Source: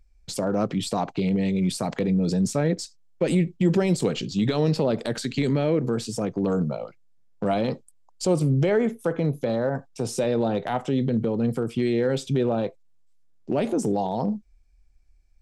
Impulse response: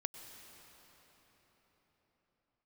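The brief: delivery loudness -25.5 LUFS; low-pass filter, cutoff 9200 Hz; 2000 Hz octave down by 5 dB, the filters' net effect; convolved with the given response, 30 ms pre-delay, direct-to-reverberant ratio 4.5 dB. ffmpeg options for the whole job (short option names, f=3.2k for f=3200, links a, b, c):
-filter_complex "[0:a]lowpass=9.2k,equalizer=f=2k:t=o:g=-6.5,asplit=2[a][b];[1:a]atrim=start_sample=2205,adelay=30[c];[b][c]afir=irnorm=-1:irlink=0,volume=-3dB[d];[a][d]amix=inputs=2:normalize=0,volume=-1.5dB"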